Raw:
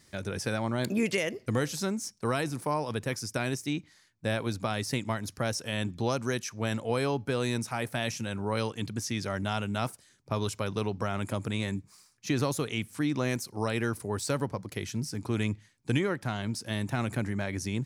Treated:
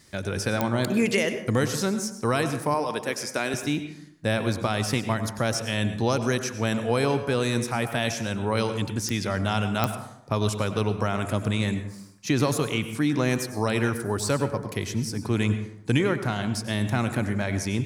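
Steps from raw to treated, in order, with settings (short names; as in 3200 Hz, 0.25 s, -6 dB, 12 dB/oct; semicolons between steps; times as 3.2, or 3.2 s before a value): 2.74–3.54 HPF 280 Hz 12 dB/oct; plate-style reverb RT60 0.78 s, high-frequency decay 0.45×, pre-delay 85 ms, DRR 9 dB; pops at 0.61/9.09/9.84, -14 dBFS; gain +5 dB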